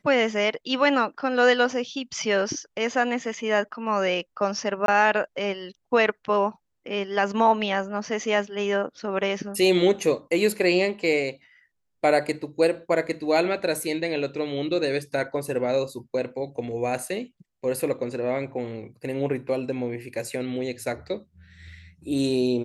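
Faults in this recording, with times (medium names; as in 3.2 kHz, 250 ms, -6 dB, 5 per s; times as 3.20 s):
4.86–4.88 s: dropout 22 ms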